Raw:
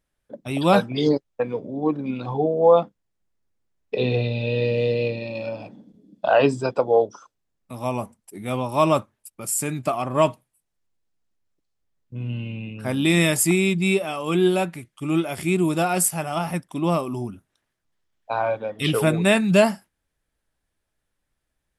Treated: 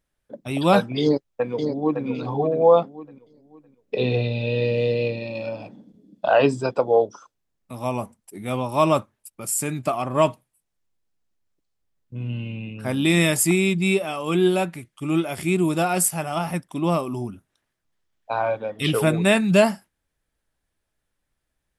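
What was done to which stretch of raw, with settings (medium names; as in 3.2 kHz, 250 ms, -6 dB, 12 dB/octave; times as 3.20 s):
1.02–2.06 s: echo throw 560 ms, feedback 30%, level -6 dB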